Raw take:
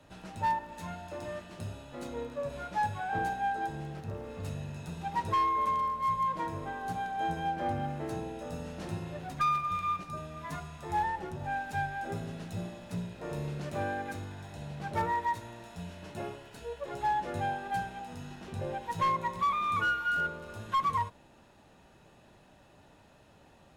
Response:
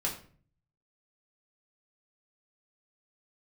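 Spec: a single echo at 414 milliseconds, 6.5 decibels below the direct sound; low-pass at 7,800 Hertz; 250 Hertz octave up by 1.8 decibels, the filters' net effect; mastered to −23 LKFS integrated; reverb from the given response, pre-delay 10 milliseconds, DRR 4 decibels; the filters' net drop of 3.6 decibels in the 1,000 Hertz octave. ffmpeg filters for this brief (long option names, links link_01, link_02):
-filter_complex "[0:a]lowpass=7800,equalizer=frequency=250:width_type=o:gain=3,equalizer=frequency=1000:width_type=o:gain=-4.5,aecho=1:1:414:0.473,asplit=2[link_01][link_02];[1:a]atrim=start_sample=2205,adelay=10[link_03];[link_02][link_03]afir=irnorm=-1:irlink=0,volume=-9dB[link_04];[link_01][link_04]amix=inputs=2:normalize=0,volume=11dB"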